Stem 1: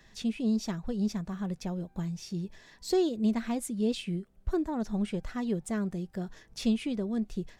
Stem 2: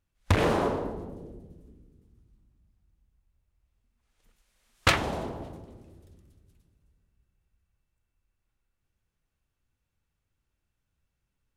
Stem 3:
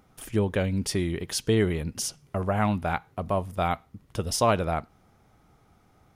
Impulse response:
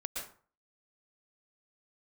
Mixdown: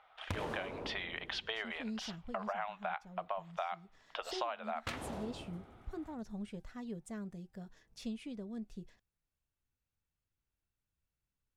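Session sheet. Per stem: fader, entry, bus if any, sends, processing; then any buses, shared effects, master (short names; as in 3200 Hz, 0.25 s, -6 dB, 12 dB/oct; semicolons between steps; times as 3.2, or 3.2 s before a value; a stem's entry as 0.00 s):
-12.0 dB, 1.40 s, no send, notch 360 Hz, Q 12
-10.0 dB, 0.00 s, no send, dry
+3.0 dB, 0.00 s, no send, Chebyshev band-pass 670–3500 Hz, order 3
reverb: off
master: compressor 12:1, threshold -35 dBFS, peak gain reduction 19 dB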